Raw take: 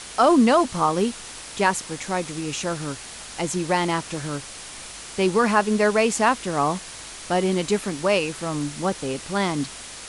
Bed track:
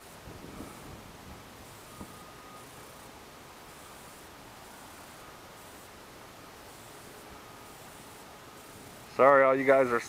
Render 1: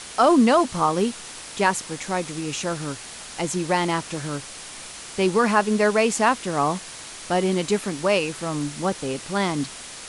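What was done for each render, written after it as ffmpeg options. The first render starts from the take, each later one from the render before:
ffmpeg -i in.wav -af "bandreject=frequency=50:width_type=h:width=4,bandreject=frequency=100:width_type=h:width=4" out.wav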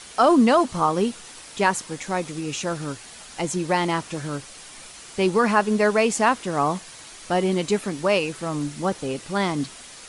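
ffmpeg -i in.wav -af "afftdn=noise_reduction=6:noise_floor=-39" out.wav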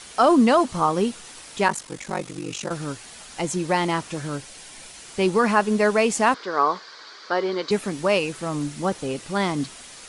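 ffmpeg -i in.wav -filter_complex "[0:a]asplit=3[link_01][link_02][link_03];[link_01]afade=type=out:start_time=1.67:duration=0.02[link_04];[link_02]aeval=exprs='val(0)*sin(2*PI*24*n/s)':channel_layout=same,afade=type=in:start_time=1.67:duration=0.02,afade=type=out:start_time=2.69:duration=0.02[link_05];[link_03]afade=type=in:start_time=2.69:duration=0.02[link_06];[link_04][link_05][link_06]amix=inputs=3:normalize=0,asettb=1/sr,asplit=3[link_07][link_08][link_09];[link_07]atrim=end=4.354[link_10];[link_08]atrim=start=4.35:end=5.07,asetpts=PTS-STARTPTS,afade=type=in:duration=0.004:curve=qsin,afade=type=out:start_time=0.716:duration=0.004:curve=qsin,bandreject=frequency=1200:width=7.2[link_11];[link_09]atrim=start=5.066[link_12];[link_10][link_11]acrossfade=duration=0.004:curve1=hsin:curve2=qsin[link_13];[link_13][link_12]acrossfade=duration=0.004:curve1=qsin:curve2=hsin,asettb=1/sr,asplit=3[link_14][link_15][link_16];[link_14]atrim=end=6.344[link_17];[link_15]atrim=start=6.34:end=7.71,asetpts=PTS-STARTPTS,afade=type=in:duration=0.004:curve=qsin,afade=type=out:start_time=1.366:duration=0.004:curve=qsin,highpass=410,equalizer=frequency=430:width_type=q:width=4:gain=6,equalizer=frequency=710:width_type=q:width=4:gain=-4,equalizer=frequency=1100:width_type=q:width=4:gain=5,equalizer=frequency=1500:width_type=q:width=4:gain=7,equalizer=frequency=2700:width_type=q:width=4:gain=-9,equalizer=frequency=4600:width_type=q:width=4:gain=8,lowpass=frequency=4900:width=0.5412,lowpass=frequency=4900:width=1.3066[link_18];[link_16]atrim=start=7.706[link_19];[link_17][link_18]acrossfade=duration=0.004:curve1=hsin:curve2=qsin[link_20];[link_20][link_19]acrossfade=duration=0.004:curve1=qsin:curve2=hsin" out.wav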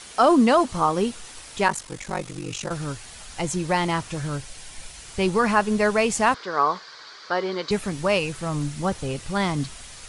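ffmpeg -i in.wav -af "asubboost=boost=5.5:cutoff=110" out.wav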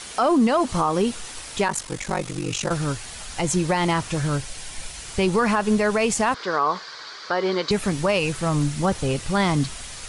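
ffmpeg -i in.wav -af "acontrast=27,alimiter=limit=-12dB:level=0:latency=1:release=97" out.wav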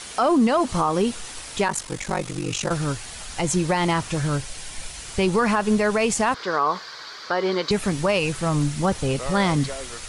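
ffmpeg -i in.wav -i bed.wav -filter_complex "[1:a]volume=-12.5dB[link_01];[0:a][link_01]amix=inputs=2:normalize=0" out.wav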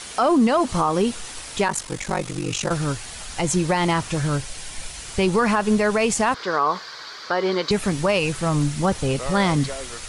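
ffmpeg -i in.wav -af "volume=1dB" out.wav

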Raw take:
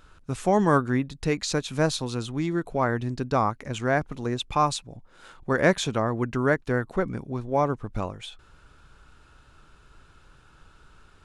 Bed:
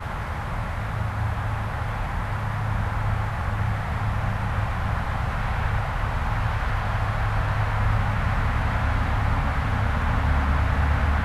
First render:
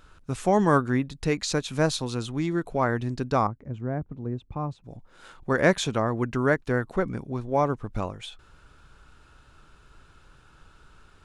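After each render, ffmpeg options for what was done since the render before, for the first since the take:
ffmpeg -i in.wav -filter_complex "[0:a]asettb=1/sr,asplit=3[link_01][link_02][link_03];[link_01]atrim=end=3.474[link_04];[link_02]atrim=start=3.47:end=4.84,asetpts=PTS-STARTPTS,afade=type=in:duration=0.004:curve=qsin,afade=type=out:start_time=1.366:duration=0.004:curve=qsin,bandpass=frequency=110:width_type=q:width=0.52[link_05];[link_03]atrim=start=4.836[link_06];[link_04][link_05]acrossfade=duration=0.004:curve1=hsin:curve2=qsin[link_07];[link_07][link_06]acrossfade=duration=0.004:curve1=qsin:curve2=hsin" out.wav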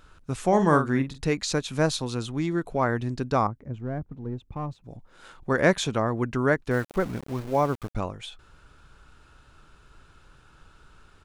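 ffmpeg -i in.wav -filter_complex "[0:a]asplit=3[link_01][link_02][link_03];[link_01]afade=type=out:start_time=0.51:duration=0.02[link_04];[link_02]asplit=2[link_05][link_06];[link_06]adelay=45,volume=-8.5dB[link_07];[link_05][link_07]amix=inputs=2:normalize=0,afade=type=in:start_time=0.51:duration=0.02,afade=type=out:start_time=1.25:duration=0.02[link_08];[link_03]afade=type=in:start_time=1.25:duration=0.02[link_09];[link_04][link_08][link_09]amix=inputs=3:normalize=0,asettb=1/sr,asplit=3[link_10][link_11][link_12];[link_10]atrim=end=3.754[link_13];[link_11]atrim=start=3.75:end=4.82,asetpts=PTS-STARTPTS,afade=type=in:duration=0.004:curve=qsin,afade=type=out:start_time=1.066:duration=0.004:curve=qsin,aeval=exprs='if(lt(val(0),0),0.708*val(0),val(0))':channel_layout=same[link_14];[link_12]atrim=start=4.816[link_15];[link_13][link_14]acrossfade=duration=0.004:curve1=hsin:curve2=qsin[link_16];[link_16][link_15]acrossfade=duration=0.004:curve1=qsin:curve2=hsin,asettb=1/sr,asplit=3[link_17][link_18][link_19];[link_17]atrim=end=6.714[link_20];[link_18]atrim=start=6.71:end=7.95,asetpts=PTS-STARTPTS,afade=type=in:duration=0.004:curve=qsin,afade=type=out:start_time=1.236:duration=0.004:curve=qsin,aeval=exprs='val(0)*gte(abs(val(0)),0.0133)':channel_layout=same[link_21];[link_19]atrim=start=7.946[link_22];[link_20][link_21]acrossfade=duration=0.004:curve1=hsin:curve2=qsin[link_23];[link_23][link_22]acrossfade=duration=0.004:curve1=qsin:curve2=hsin" out.wav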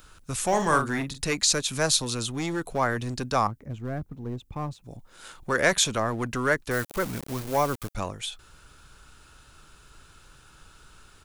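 ffmpeg -i in.wav -filter_complex "[0:a]acrossover=split=560|760[link_01][link_02][link_03];[link_01]asoftclip=type=hard:threshold=-28dB[link_04];[link_04][link_02][link_03]amix=inputs=3:normalize=0,crystalizer=i=3:c=0" out.wav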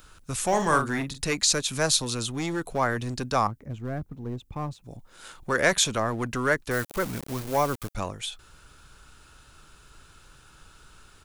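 ffmpeg -i in.wav -af anull out.wav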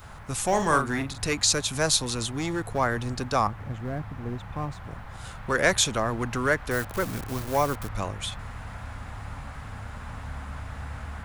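ffmpeg -i in.wav -i bed.wav -filter_complex "[1:a]volume=-15dB[link_01];[0:a][link_01]amix=inputs=2:normalize=0" out.wav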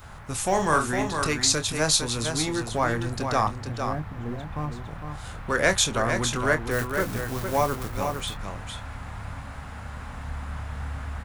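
ffmpeg -i in.wav -filter_complex "[0:a]asplit=2[link_01][link_02];[link_02]adelay=26,volume=-10dB[link_03];[link_01][link_03]amix=inputs=2:normalize=0,aecho=1:1:457:0.473" out.wav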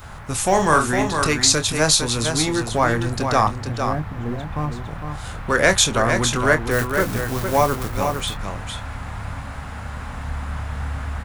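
ffmpeg -i in.wav -af "volume=6dB,alimiter=limit=-3dB:level=0:latency=1" out.wav

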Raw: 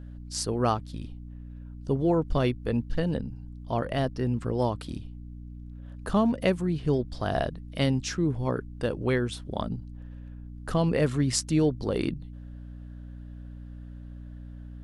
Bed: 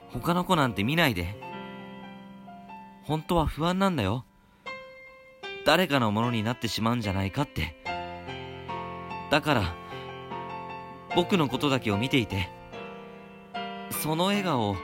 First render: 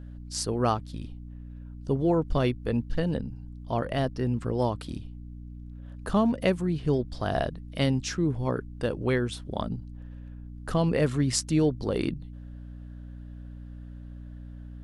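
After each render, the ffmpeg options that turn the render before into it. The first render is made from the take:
ffmpeg -i in.wav -af anull out.wav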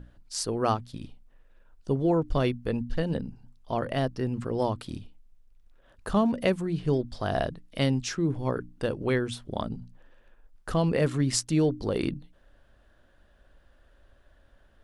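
ffmpeg -i in.wav -af "bandreject=frequency=60:width_type=h:width=6,bandreject=frequency=120:width_type=h:width=6,bandreject=frequency=180:width_type=h:width=6,bandreject=frequency=240:width_type=h:width=6,bandreject=frequency=300:width_type=h:width=6" out.wav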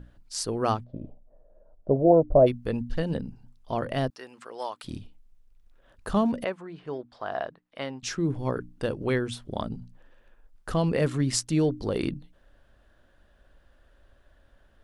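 ffmpeg -i in.wav -filter_complex "[0:a]asplit=3[link_01][link_02][link_03];[link_01]afade=type=out:start_time=0.83:duration=0.02[link_04];[link_02]lowpass=frequency=620:width_type=q:width=7.6,afade=type=in:start_time=0.83:duration=0.02,afade=type=out:start_time=2.46:duration=0.02[link_05];[link_03]afade=type=in:start_time=2.46:duration=0.02[link_06];[link_04][link_05][link_06]amix=inputs=3:normalize=0,asettb=1/sr,asplit=3[link_07][link_08][link_09];[link_07]atrim=end=4.104[link_10];[link_08]atrim=start=4.1:end=4.84,asetpts=PTS-STARTPTS,afade=type=in:duration=0.004:curve=qsin,afade=type=out:start_time=0.736:duration=0.004:curve=qsin,highpass=810[link_11];[link_09]atrim=start=4.836[link_12];[link_10][link_11]acrossfade=duration=0.004:curve1=hsin:curve2=qsin[link_13];[link_13][link_12]acrossfade=duration=0.004:curve1=qsin:curve2=hsin,asettb=1/sr,asplit=3[link_14][link_15][link_16];[link_14]atrim=end=6.444[link_17];[link_15]atrim=start=6.44:end=8.03,asetpts=PTS-STARTPTS,afade=type=in:duration=0.004:curve=qsin,afade=type=out:start_time=1.586:duration=0.004:curve=qsin,bandpass=frequency=1100:width_type=q:width=0.93[link_18];[link_16]atrim=start=8.026[link_19];[link_17][link_18]acrossfade=duration=0.004:curve1=hsin:curve2=qsin[link_20];[link_20][link_19]acrossfade=duration=0.004:curve1=qsin:curve2=hsin" out.wav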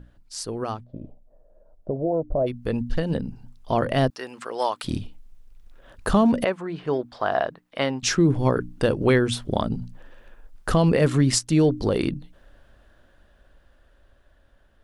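ffmpeg -i in.wav -af "alimiter=limit=-19dB:level=0:latency=1:release=241,dynaudnorm=framelen=560:gausssize=11:maxgain=10dB" out.wav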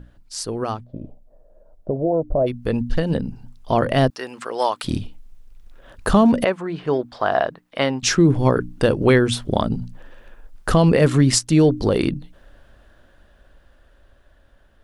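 ffmpeg -i in.wav -af "volume=4dB" out.wav

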